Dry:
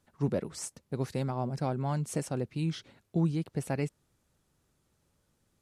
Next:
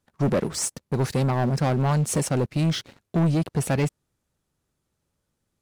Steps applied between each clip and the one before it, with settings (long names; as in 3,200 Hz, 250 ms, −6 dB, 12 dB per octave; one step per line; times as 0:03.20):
leveller curve on the samples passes 3
level +2 dB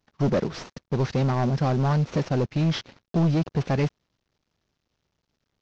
variable-slope delta modulation 32 kbit/s